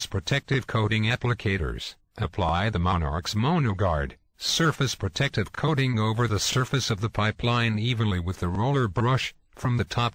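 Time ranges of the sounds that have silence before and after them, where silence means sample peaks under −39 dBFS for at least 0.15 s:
0:02.18–0:04.13
0:04.40–0:09.30

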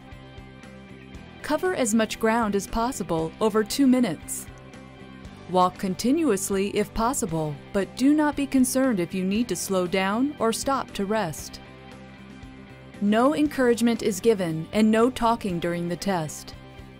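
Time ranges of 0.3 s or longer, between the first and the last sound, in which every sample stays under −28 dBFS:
0:04.41–0:05.50
0:11.55–0:13.02

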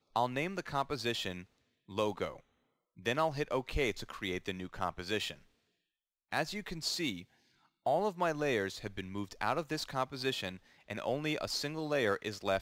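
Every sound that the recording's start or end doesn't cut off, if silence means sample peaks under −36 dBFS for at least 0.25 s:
0:01.92–0:02.29
0:03.06–0:05.32
0:06.33–0:07.19
0:07.86–0:10.51

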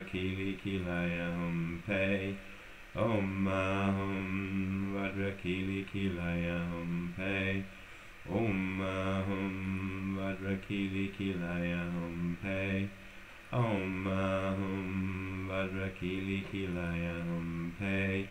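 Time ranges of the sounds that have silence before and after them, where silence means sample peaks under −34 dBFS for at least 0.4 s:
0:02.95–0:07.63
0:08.30–0:12.87

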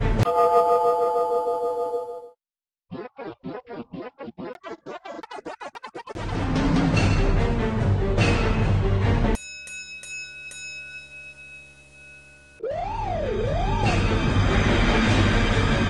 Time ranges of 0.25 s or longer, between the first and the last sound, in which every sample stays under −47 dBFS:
0:02.32–0:02.91

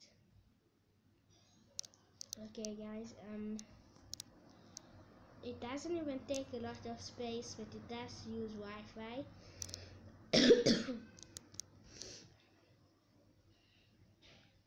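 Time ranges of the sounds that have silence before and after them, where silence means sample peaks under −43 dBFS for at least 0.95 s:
0:01.79–0:12.14

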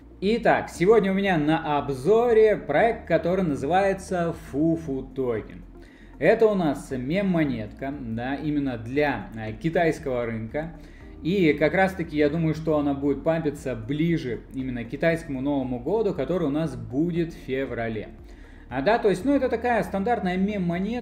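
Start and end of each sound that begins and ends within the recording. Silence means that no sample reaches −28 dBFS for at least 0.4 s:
0:06.21–0:10.68
0:11.25–0:18.03

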